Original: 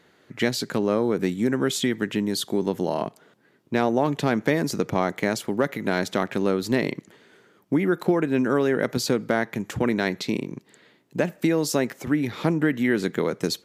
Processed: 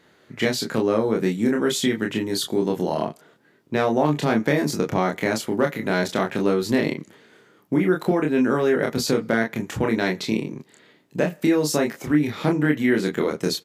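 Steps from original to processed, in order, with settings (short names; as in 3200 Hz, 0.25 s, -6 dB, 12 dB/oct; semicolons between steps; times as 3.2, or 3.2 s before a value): early reflections 27 ms -3 dB, 40 ms -11 dB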